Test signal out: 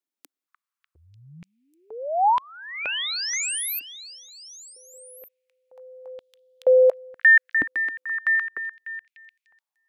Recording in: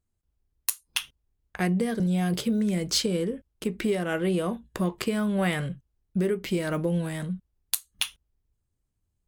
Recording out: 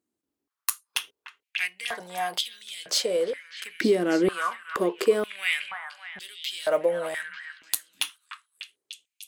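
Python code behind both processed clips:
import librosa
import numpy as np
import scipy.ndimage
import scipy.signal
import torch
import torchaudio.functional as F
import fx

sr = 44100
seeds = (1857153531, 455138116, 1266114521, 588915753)

y = fx.echo_stepped(x, sr, ms=298, hz=1400.0, octaves=0.7, feedback_pct=70, wet_db=-6.0)
y = fx.filter_held_highpass(y, sr, hz=2.1, low_hz=290.0, high_hz=3400.0)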